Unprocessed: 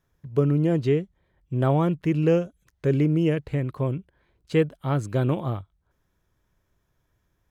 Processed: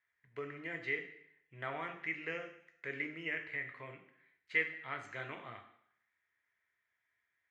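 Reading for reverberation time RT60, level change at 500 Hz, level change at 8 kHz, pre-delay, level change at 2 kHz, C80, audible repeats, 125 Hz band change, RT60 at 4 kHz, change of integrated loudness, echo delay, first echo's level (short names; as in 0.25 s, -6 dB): 0.70 s, -21.0 dB, n/a, 3 ms, +3.0 dB, 11.5 dB, none, -31.5 dB, 0.70 s, -15.5 dB, none, none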